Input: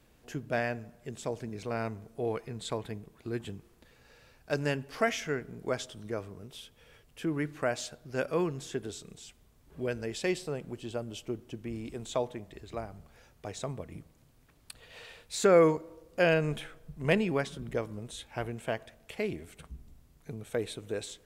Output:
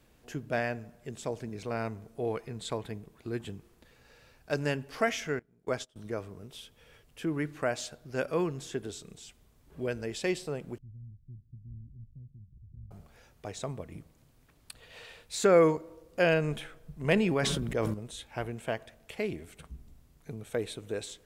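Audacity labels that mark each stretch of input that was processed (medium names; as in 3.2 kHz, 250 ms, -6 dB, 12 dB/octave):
5.390000	5.960000	gate -40 dBFS, range -22 dB
10.780000	12.910000	inverse Chebyshev low-pass stop band from 830 Hz, stop band 80 dB
17.120000	17.940000	decay stretcher at most 25 dB/s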